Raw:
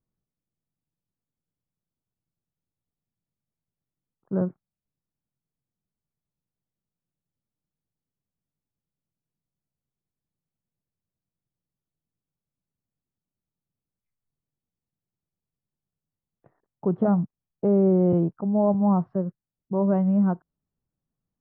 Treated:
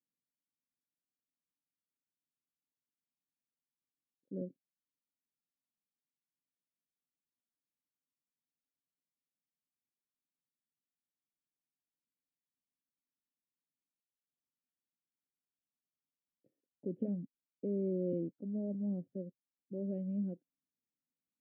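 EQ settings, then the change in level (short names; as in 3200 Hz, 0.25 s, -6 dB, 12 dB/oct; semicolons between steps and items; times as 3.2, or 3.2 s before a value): vocal tract filter i; vowel filter e; low shelf 360 Hz +11.5 dB; +6.5 dB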